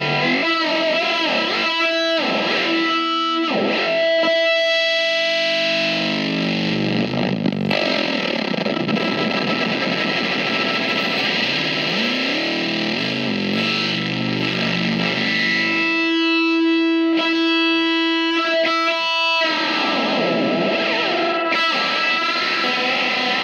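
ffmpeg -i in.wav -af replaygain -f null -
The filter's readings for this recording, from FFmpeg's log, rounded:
track_gain = -0.3 dB
track_peak = 0.394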